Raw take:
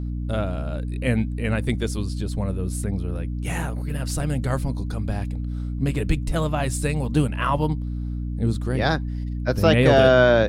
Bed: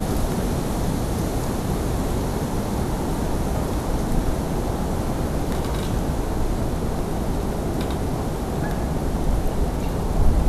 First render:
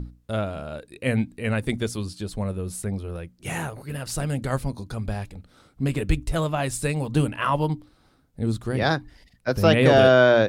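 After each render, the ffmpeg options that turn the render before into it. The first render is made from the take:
-af "bandreject=f=60:t=h:w=6,bandreject=f=120:t=h:w=6,bandreject=f=180:t=h:w=6,bandreject=f=240:t=h:w=6,bandreject=f=300:t=h:w=6"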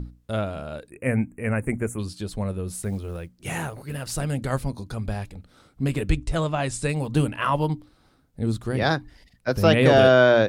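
-filter_complex "[0:a]asplit=3[a][b][c];[a]afade=t=out:st=0.89:d=0.02[d];[b]asuperstop=centerf=4200:order=8:qfactor=0.94,afade=t=in:st=0.89:d=0.02,afade=t=out:st=1.98:d=0.02[e];[c]afade=t=in:st=1.98:d=0.02[f];[d][e][f]amix=inputs=3:normalize=0,asettb=1/sr,asplit=3[g][h][i];[g]atrim=end=2.694[j];[h]atrim=start=2.69:end=4.15,asetpts=PTS-STARTPTS,afade=t=in:d=0.004:c=qsin,afade=t=out:st=1.456:d=0.004:c=qsin,acrusher=bits=8:mode=log:mix=0:aa=0.000001[k];[i]atrim=start=4.146[l];[j][k]acrossfade=d=0.004:c1=hsin:c2=qsin[m];[m][l]acrossfade=d=0.004:c1=qsin:c2=hsin,asettb=1/sr,asplit=3[n][o][p];[n]atrim=end=6.104[q];[o]atrim=start=6.1:end=6.89,asetpts=PTS-STARTPTS,afade=t=in:d=0.004:c=qsin,afade=t=out:st=0.786:d=0.004:c=qsin,lowpass=f=9.1k:w=0.5412,lowpass=f=9.1k:w=1.3066[r];[p]atrim=start=6.886[s];[q][r]acrossfade=d=0.004:c1=hsin:c2=qsin[t];[t][s]acrossfade=d=0.004:c1=qsin:c2=hsin"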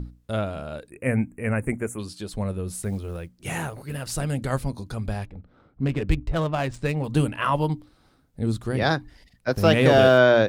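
-filter_complex "[0:a]asettb=1/sr,asplit=3[a][b][c];[a]atrim=end=1.734[d];[b]atrim=start=1.73:end=2.34,asetpts=PTS-STARTPTS,afade=t=in:d=0.004:c=qsin,afade=t=out:st=0.606:d=0.004:c=qsin,lowshelf=f=130:g=-10[e];[c]atrim=start=2.336[f];[d][e]acrossfade=d=0.004:c1=hsin:c2=qsin[g];[g][f]acrossfade=d=0.004:c1=qsin:c2=hsin,asettb=1/sr,asplit=3[h][i][j];[h]atrim=end=5.254[k];[i]atrim=start=5.25:end=7.04,asetpts=PTS-STARTPTS,afade=t=in:d=0.004:c=qsin,afade=t=out:st=1.786:d=0.004:c=qsin,adynamicsmooth=sensitivity=4.5:basefreq=1.6k[l];[j]atrim=start=7.036[m];[k][l]acrossfade=d=0.004:c1=hsin:c2=qsin[n];[n][m]acrossfade=d=0.004:c1=qsin:c2=hsin,asettb=1/sr,asplit=3[o][p][q];[o]atrim=end=9.534[r];[p]atrim=start=9.53:end=10.18,asetpts=PTS-STARTPTS,afade=t=in:d=0.004:c=qsin,afade=t=out:st=0.646:d=0.004:c=qsin,aeval=exprs='sgn(val(0))*max(abs(val(0))-0.0126,0)':c=same[s];[q]atrim=start=10.176[t];[r][s]acrossfade=d=0.004:c1=hsin:c2=qsin[u];[u][t]acrossfade=d=0.004:c1=qsin:c2=hsin"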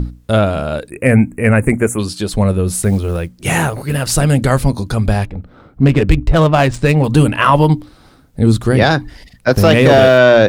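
-af "acontrast=86,alimiter=level_in=7.5dB:limit=-1dB:release=50:level=0:latency=1"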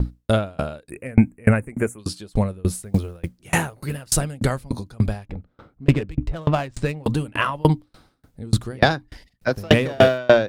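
-af "aeval=exprs='val(0)*pow(10,-32*if(lt(mod(3.4*n/s,1),2*abs(3.4)/1000),1-mod(3.4*n/s,1)/(2*abs(3.4)/1000),(mod(3.4*n/s,1)-2*abs(3.4)/1000)/(1-2*abs(3.4)/1000))/20)':c=same"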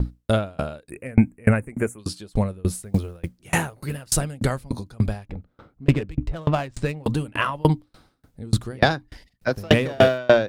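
-af "volume=-1.5dB"

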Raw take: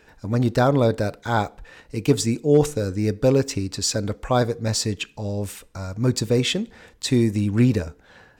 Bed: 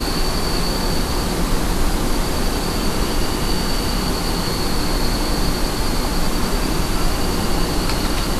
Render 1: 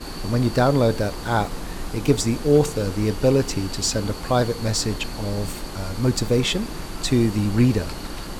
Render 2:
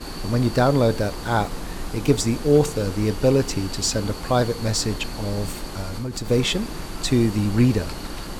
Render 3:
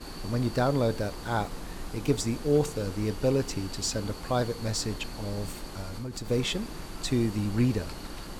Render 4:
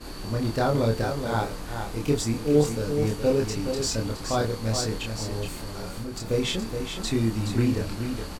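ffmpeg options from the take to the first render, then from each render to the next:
-filter_complex "[1:a]volume=-12.5dB[a];[0:a][a]amix=inputs=2:normalize=0"
-filter_complex "[0:a]asettb=1/sr,asplit=3[a][b][c];[a]atrim=end=5.814[d];[b]atrim=start=5.81:end=6.3,asetpts=PTS-STARTPTS,afade=t=in:d=0.004:c=qsin,afade=t=out:st=0.486:d=0.004:c=qsin,acompressor=threshold=-24dB:ratio=12:attack=3.2:release=140:knee=1:detection=peak[e];[c]atrim=start=6.296[f];[d][e]acrossfade=d=0.004:c1=hsin:c2=qsin[g];[g][f]acrossfade=d=0.004:c1=qsin:c2=hsin"
-af "volume=-7.5dB"
-filter_complex "[0:a]asplit=2[a][b];[b]adelay=27,volume=-2dB[c];[a][c]amix=inputs=2:normalize=0,asplit=2[d][e];[e]aecho=0:1:421:0.447[f];[d][f]amix=inputs=2:normalize=0"

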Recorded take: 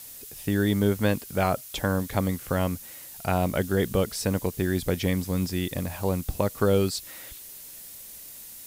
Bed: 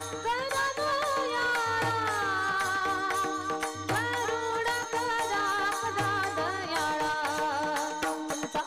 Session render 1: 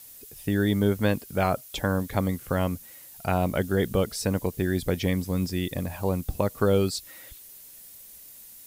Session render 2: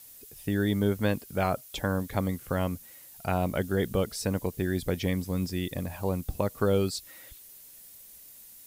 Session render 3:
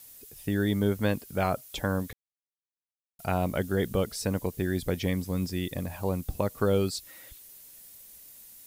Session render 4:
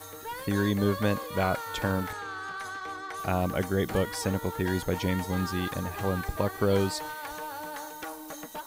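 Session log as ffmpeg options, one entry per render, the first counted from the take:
-af "afftdn=nr=6:nf=-44"
-af "volume=-3dB"
-filter_complex "[0:a]asplit=3[a][b][c];[a]atrim=end=2.13,asetpts=PTS-STARTPTS,afade=t=out:st=2.126:d=0.004:c=hsin[d];[b]atrim=start=2.13:end=3.19,asetpts=PTS-STARTPTS,volume=0[e];[c]atrim=start=3.19,asetpts=PTS-STARTPTS,afade=t=in:d=0.004:c=hsin[f];[d][e][f]concat=n=3:v=0:a=1"
-filter_complex "[1:a]volume=-8.5dB[a];[0:a][a]amix=inputs=2:normalize=0"

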